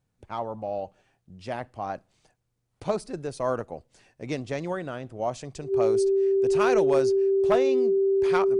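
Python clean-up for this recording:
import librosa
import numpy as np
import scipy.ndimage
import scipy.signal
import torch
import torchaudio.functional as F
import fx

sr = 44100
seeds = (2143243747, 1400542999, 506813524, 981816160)

y = fx.fix_declip(x, sr, threshold_db=-14.0)
y = fx.notch(y, sr, hz=390.0, q=30.0)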